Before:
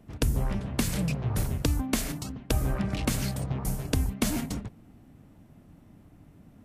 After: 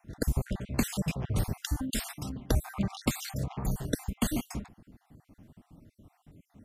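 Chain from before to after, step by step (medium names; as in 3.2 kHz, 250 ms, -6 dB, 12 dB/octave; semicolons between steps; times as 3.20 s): random holes in the spectrogram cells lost 47%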